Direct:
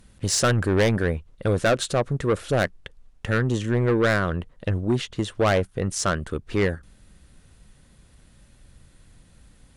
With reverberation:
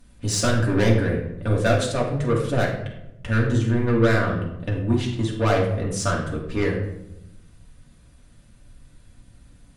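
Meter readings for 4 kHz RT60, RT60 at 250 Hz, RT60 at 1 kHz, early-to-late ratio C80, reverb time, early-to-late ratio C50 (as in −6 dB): 0.55 s, 1.3 s, 0.80 s, 8.5 dB, 0.90 s, 5.0 dB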